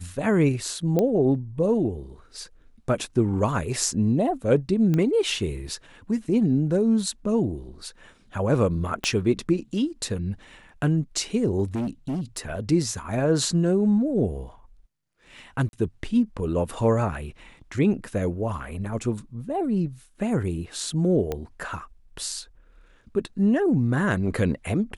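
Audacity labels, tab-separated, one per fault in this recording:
0.990000	0.990000	pop -11 dBFS
4.940000	4.940000	pop -14 dBFS
9.040000	9.040000	pop -10 dBFS
11.750000	12.390000	clipped -24 dBFS
15.690000	15.730000	dropout 41 ms
21.320000	21.320000	pop -15 dBFS

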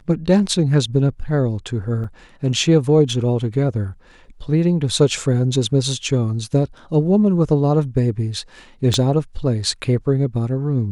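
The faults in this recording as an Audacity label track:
2.040000	2.040000	dropout 4.9 ms
8.940000	8.940000	pop -8 dBFS

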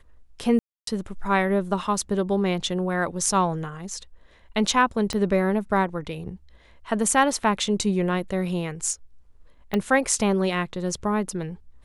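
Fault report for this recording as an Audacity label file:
0.590000	0.870000	dropout 283 ms
5.130000	5.130000	pop -14 dBFS
9.740000	9.740000	pop -12 dBFS

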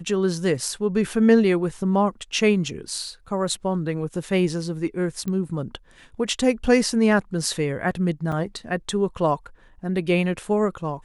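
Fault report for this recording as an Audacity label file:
5.280000	5.280000	pop -17 dBFS
8.320000	8.320000	dropout 4.4 ms

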